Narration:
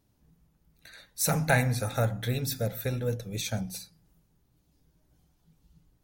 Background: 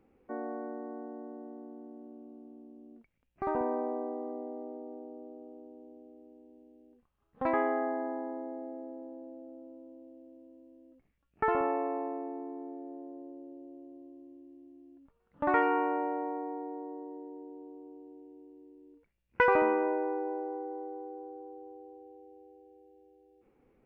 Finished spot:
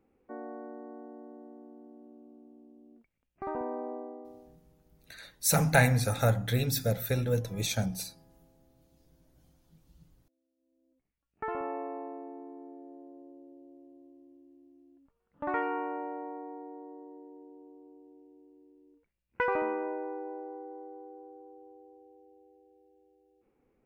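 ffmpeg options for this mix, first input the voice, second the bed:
ffmpeg -i stem1.wav -i stem2.wav -filter_complex "[0:a]adelay=4250,volume=1.5dB[link_01];[1:a]volume=18dB,afade=type=out:start_time=3.93:duration=0.66:silence=0.0707946,afade=type=in:start_time=10.56:duration=1.21:silence=0.0794328[link_02];[link_01][link_02]amix=inputs=2:normalize=0" out.wav

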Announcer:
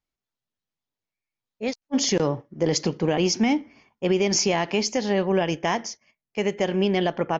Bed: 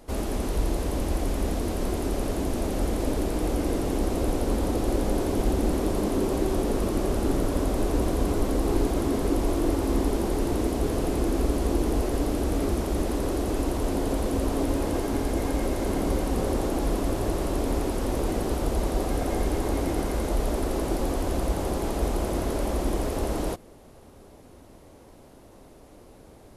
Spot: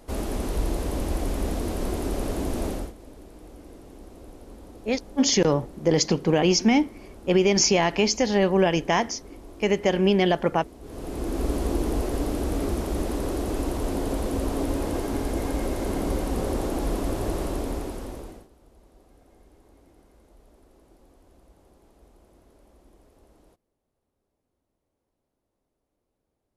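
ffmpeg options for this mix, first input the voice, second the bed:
ffmpeg -i stem1.wav -i stem2.wav -filter_complex "[0:a]adelay=3250,volume=2dB[link_01];[1:a]volume=18dB,afade=type=out:start_time=2.68:duration=0.25:silence=0.112202,afade=type=in:start_time=10.81:duration=0.71:silence=0.11885,afade=type=out:start_time=17.41:duration=1.07:silence=0.0354813[link_02];[link_01][link_02]amix=inputs=2:normalize=0" out.wav

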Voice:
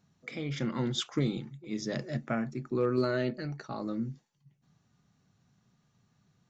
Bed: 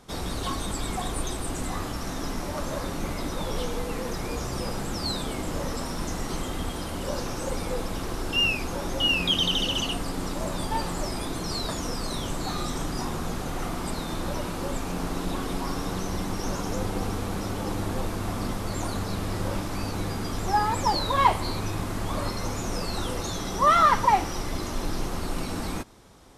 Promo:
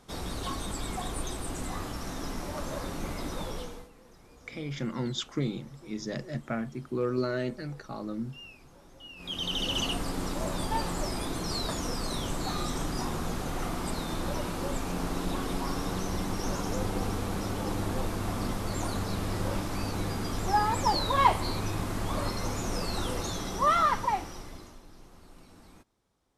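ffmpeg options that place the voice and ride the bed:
ffmpeg -i stem1.wav -i stem2.wav -filter_complex "[0:a]adelay=4200,volume=-1dB[link_01];[1:a]volume=18dB,afade=type=out:start_time=3.39:duration=0.51:silence=0.1,afade=type=in:start_time=9.16:duration=0.67:silence=0.0749894,afade=type=out:start_time=23.18:duration=1.64:silence=0.0891251[link_02];[link_01][link_02]amix=inputs=2:normalize=0" out.wav

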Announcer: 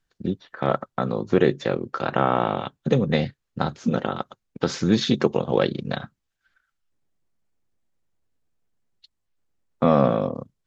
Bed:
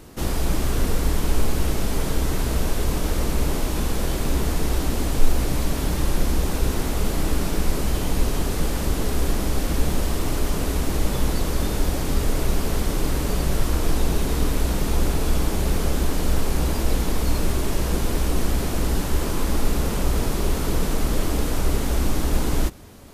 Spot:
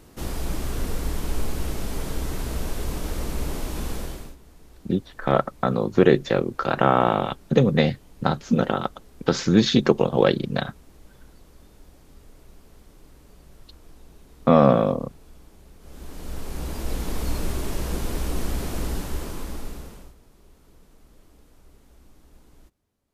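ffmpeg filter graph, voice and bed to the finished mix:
ffmpeg -i stem1.wav -i stem2.wav -filter_complex "[0:a]adelay=4650,volume=2.5dB[link_01];[1:a]volume=17dB,afade=type=out:start_time=3.93:duration=0.43:silence=0.0794328,afade=type=in:start_time=15.8:duration=1.42:silence=0.0707946,afade=type=out:start_time=18.8:duration=1.35:silence=0.0446684[link_02];[link_01][link_02]amix=inputs=2:normalize=0" out.wav

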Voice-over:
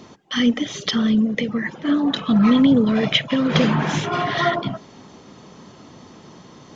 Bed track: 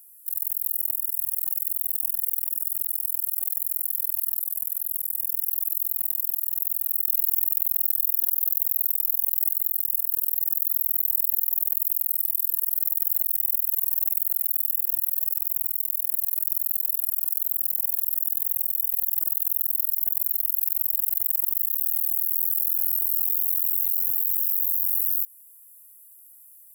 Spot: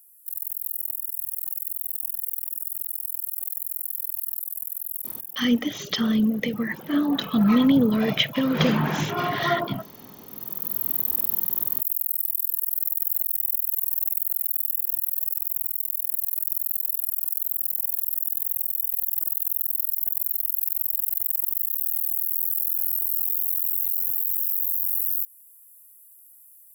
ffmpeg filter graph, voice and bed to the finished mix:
ffmpeg -i stem1.wav -i stem2.wav -filter_complex "[0:a]adelay=5050,volume=-3.5dB[link_01];[1:a]volume=18.5dB,afade=type=out:start_time=4.98:duration=0.48:silence=0.105925,afade=type=in:start_time=10.25:duration=0.67:silence=0.0794328[link_02];[link_01][link_02]amix=inputs=2:normalize=0" out.wav

